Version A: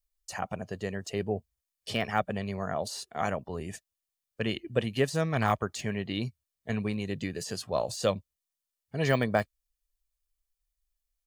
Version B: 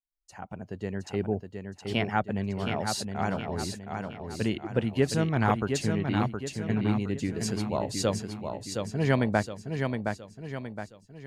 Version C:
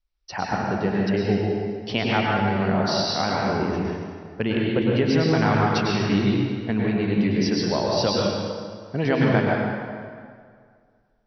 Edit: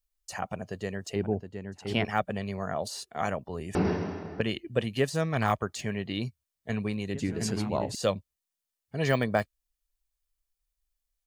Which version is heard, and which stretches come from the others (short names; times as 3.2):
A
1.16–2.05 from B
3.75–4.41 from C
7.14–7.95 from B